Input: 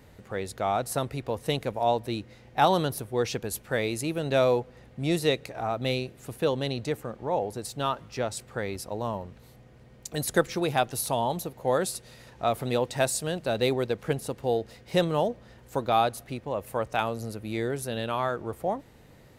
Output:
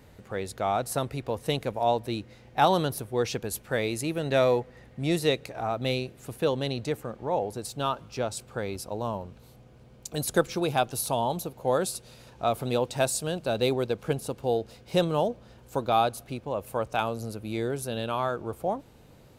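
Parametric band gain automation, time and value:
parametric band 1,900 Hz 0.22 octaves
0:03.84 −2 dB
0:04.55 +8.5 dB
0:05.39 −2.5 dB
0:07.37 −2.5 dB
0:08.00 −10.5 dB

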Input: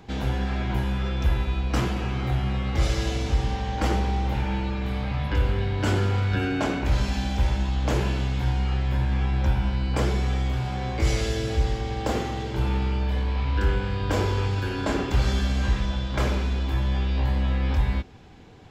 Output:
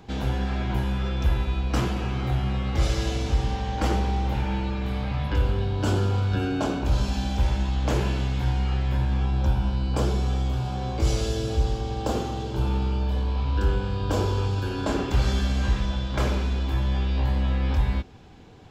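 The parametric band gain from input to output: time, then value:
parametric band 2,000 Hz 0.53 octaves
0:05.23 −3 dB
0:05.69 −12.5 dB
0:06.90 −12.5 dB
0:07.58 −2.5 dB
0:08.93 −2.5 dB
0:09.33 −12.5 dB
0:14.59 −12.5 dB
0:15.16 −3 dB

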